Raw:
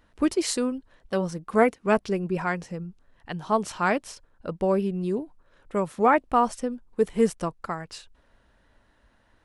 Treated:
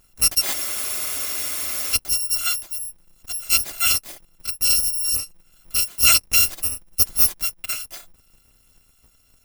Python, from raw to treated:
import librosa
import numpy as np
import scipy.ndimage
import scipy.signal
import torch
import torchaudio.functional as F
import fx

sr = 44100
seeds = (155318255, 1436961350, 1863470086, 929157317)

y = fx.bit_reversed(x, sr, seeds[0], block=256)
y = fx.spec_freeze(y, sr, seeds[1], at_s=0.55, hold_s=1.38)
y = y * librosa.db_to_amplitude(4.5)